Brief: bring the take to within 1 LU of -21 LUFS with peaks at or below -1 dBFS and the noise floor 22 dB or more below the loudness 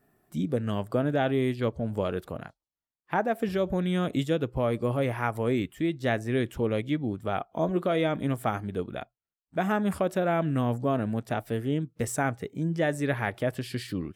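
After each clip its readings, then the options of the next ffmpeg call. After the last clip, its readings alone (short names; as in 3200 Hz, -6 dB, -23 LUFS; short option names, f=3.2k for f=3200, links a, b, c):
loudness -29.0 LUFS; peak -12.5 dBFS; loudness target -21.0 LUFS
-> -af "volume=8dB"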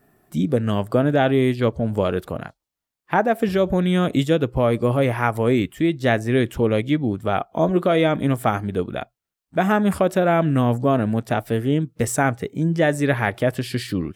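loudness -21.0 LUFS; peak -4.5 dBFS; noise floor -86 dBFS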